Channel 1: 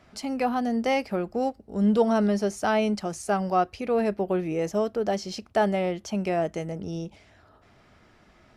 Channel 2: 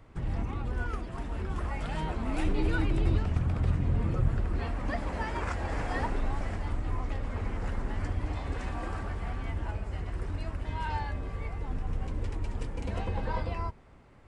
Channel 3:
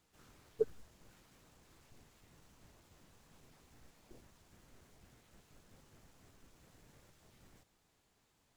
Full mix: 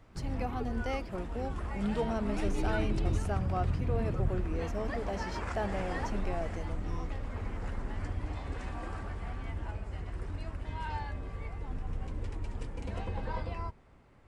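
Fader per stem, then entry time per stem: -12.0, -4.0, -9.5 dB; 0.00, 0.00, 0.00 s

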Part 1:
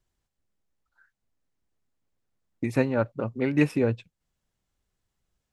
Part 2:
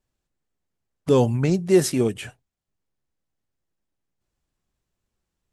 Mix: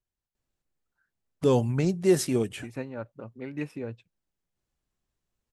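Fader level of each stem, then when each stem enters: -12.0, -4.5 dB; 0.00, 0.35 s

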